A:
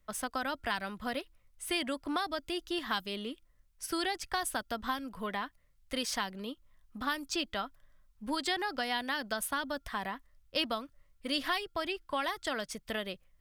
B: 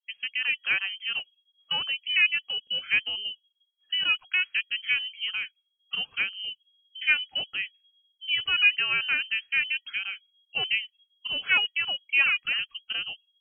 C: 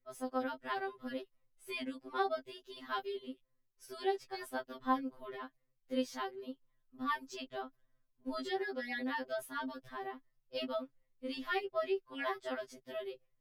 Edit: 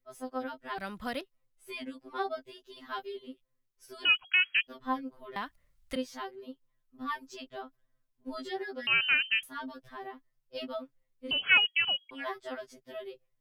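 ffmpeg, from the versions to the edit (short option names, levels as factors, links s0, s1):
-filter_complex "[0:a]asplit=2[s0][s1];[1:a]asplit=3[s2][s3][s4];[2:a]asplit=6[s5][s6][s7][s8][s9][s10];[s5]atrim=end=0.782[s11];[s0]atrim=start=0.778:end=1.212[s12];[s6]atrim=start=1.208:end=4.052[s13];[s2]atrim=start=4.048:end=4.672[s14];[s7]atrim=start=4.668:end=5.362[s15];[s1]atrim=start=5.358:end=5.962[s16];[s8]atrim=start=5.958:end=8.872[s17];[s3]atrim=start=8.868:end=9.432[s18];[s9]atrim=start=9.428:end=11.312[s19];[s4]atrim=start=11.308:end=12.112[s20];[s10]atrim=start=12.108[s21];[s11][s12]acrossfade=d=0.004:c1=hsin:c2=hsin[s22];[s22][s13]acrossfade=d=0.004:c1=hsin:c2=hsin[s23];[s23][s14]acrossfade=d=0.004:c1=hsin:c2=hsin[s24];[s24][s15]acrossfade=d=0.004:c1=hsin:c2=hsin[s25];[s25][s16]acrossfade=d=0.004:c1=hsin:c2=hsin[s26];[s26][s17]acrossfade=d=0.004:c1=hsin:c2=hsin[s27];[s27][s18]acrossfade=d=0.004:c1=hsin:c2=hsin[s28];[s28][s19]acrossfade=d=0.004:c1=hsin:c2=hsin[s29];[s29][s20]acrossfade=d=0.004:c1=hsin:c2=hsin[s30];[s30][s21]acrossfade=d=0.004:c1=hsin:c2=hsin"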